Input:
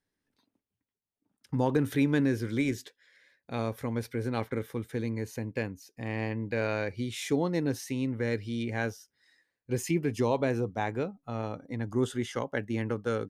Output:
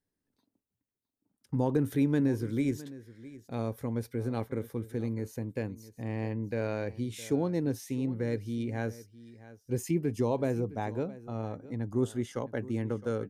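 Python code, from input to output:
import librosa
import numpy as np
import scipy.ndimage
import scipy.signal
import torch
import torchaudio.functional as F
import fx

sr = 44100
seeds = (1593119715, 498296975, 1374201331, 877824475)

p1 = fx.peak_eq(x, sr, hz=2500.0, db=-9.0, octaves=2.9)
y = p1 + fx.echo_single(p1, sr, ms=662, db=-17.5, dry=0)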